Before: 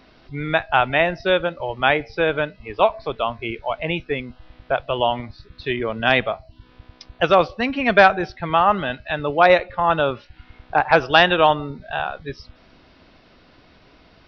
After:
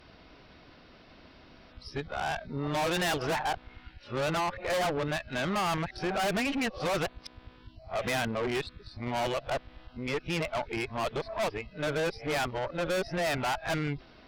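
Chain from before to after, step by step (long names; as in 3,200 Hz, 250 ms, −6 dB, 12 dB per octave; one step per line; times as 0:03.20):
played backwards from end to start
tube saturation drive 27 dB, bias 0.55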